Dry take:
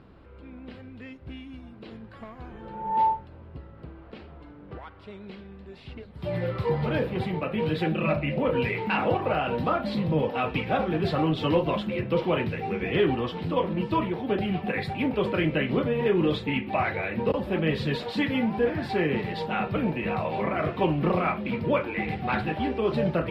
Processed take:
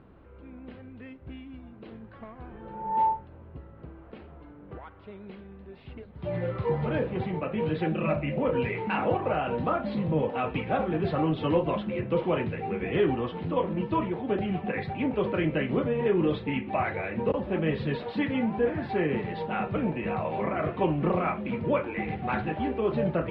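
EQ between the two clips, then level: air absorption 410 m; tone controls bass -2 dB, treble +4 dB; 0.0 dB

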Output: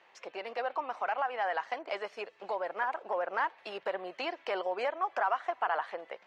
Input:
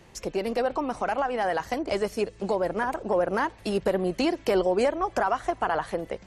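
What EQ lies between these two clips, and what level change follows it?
Butterworth band-pass 1500 Hz, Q 0.58; -3.0 dB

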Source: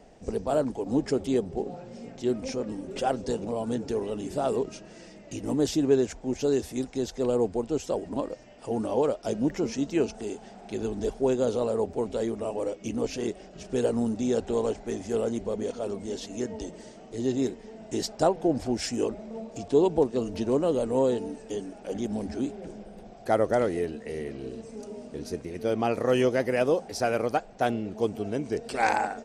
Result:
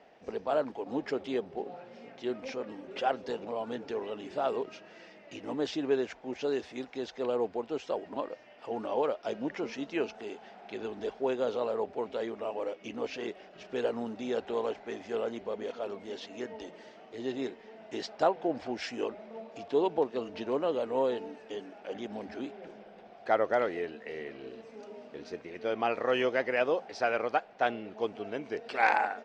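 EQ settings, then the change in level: HPF 1300 Hz 6 dB/oct; LPF 3200 Hz 12 dB/oct; air absorption 82 m; +4.5 dB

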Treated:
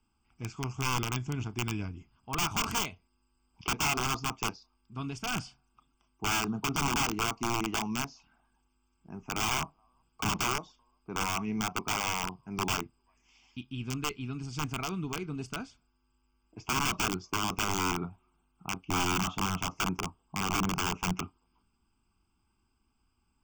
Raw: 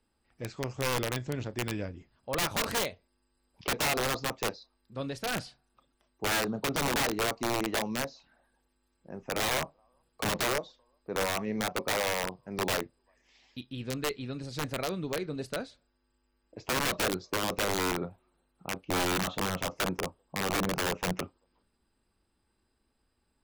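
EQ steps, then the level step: fixed phaser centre 2700 Hz, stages 8; +3.0 dB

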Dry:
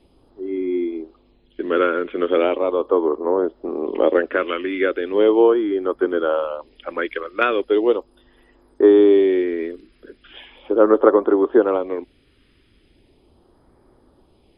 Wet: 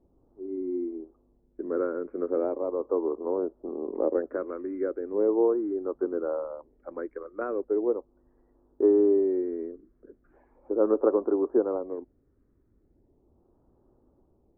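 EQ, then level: Gaussian blur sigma 8 samples; -8.0 dB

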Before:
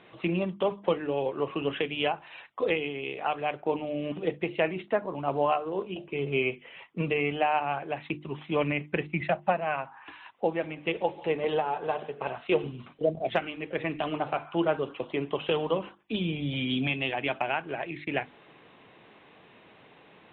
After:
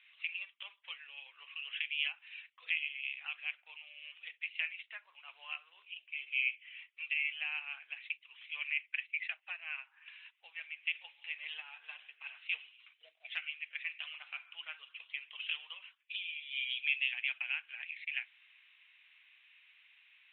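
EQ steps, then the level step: ladder high-pass 2100 Hz, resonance 50%; air absorption 170 m; +4.0 dB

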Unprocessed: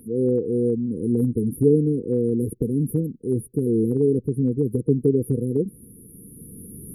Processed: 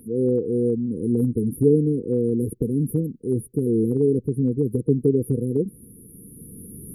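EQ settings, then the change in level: dynamic EQ 1800 Hz, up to -3 dB, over -55 dBFS, Q 4; 0.0 dB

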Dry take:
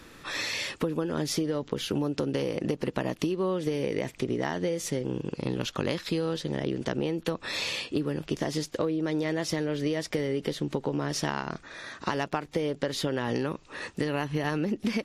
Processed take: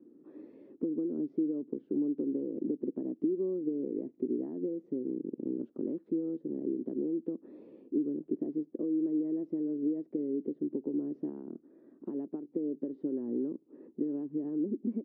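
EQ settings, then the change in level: Butterworth band-pass 300 Hz, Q 2; 0.0 dB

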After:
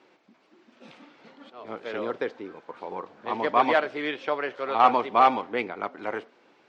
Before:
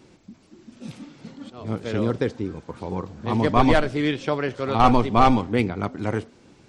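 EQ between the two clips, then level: BPF 530–2900 Hz; 0.0 dB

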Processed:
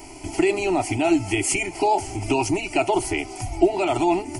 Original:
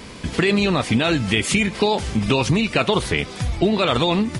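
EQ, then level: bell 210 Hz -12 dB 0.38 oct; fixed phaser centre 330 Hz, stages 8; fixed phaser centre 750 Hz, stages 8; +5.5 dB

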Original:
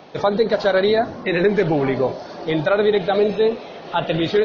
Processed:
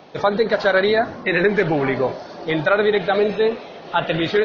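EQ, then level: dynamic EQ 1700 Hz, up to +7 dB, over -36 dBFS, Q 0.93; -1.5 dB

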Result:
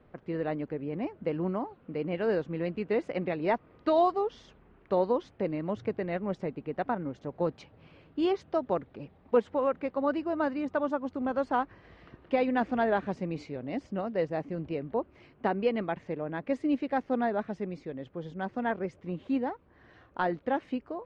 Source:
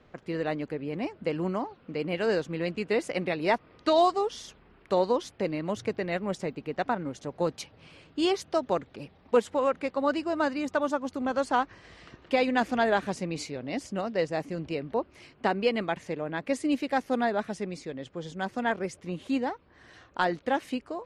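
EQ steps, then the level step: tape spacing loss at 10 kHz 31 dB; 0.0 dB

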